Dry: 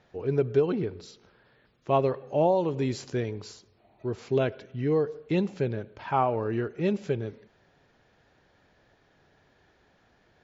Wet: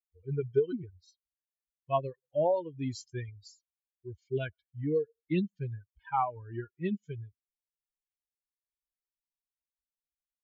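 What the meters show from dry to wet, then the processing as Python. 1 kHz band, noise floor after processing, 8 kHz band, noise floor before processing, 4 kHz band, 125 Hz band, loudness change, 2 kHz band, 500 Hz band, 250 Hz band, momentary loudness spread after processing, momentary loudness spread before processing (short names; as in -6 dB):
-4.5 dB, under -85 dBFS, n/a, -65 dBFS, -7.0 dB, -6.0 dB, -5.5 dB, -6.5 dB, -6.5 dB, -6.5 dB, 16 LU, 12 LU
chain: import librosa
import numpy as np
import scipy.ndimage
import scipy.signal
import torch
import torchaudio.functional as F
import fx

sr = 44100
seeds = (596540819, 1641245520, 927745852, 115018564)

y = fx.bin_expand(x, sr, power=3.0)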